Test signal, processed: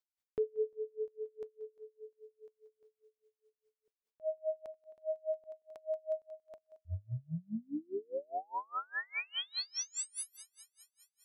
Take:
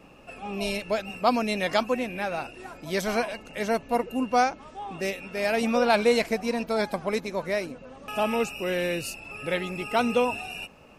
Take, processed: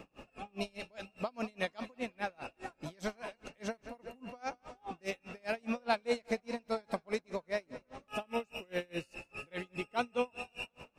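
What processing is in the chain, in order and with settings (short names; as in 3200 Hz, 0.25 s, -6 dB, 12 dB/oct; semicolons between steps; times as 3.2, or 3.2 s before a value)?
bell 12000 Hz -12.5 dB 0.33 oct; compressor 1.5:1, threshold -49 dBFS; on a send: thinning echo 0.181 s, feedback 67%, high-pass 180 Hz, level -16 dB; on the sum: dB-linear tremolo 4.9 Hz, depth 34 dB; gain +4 dB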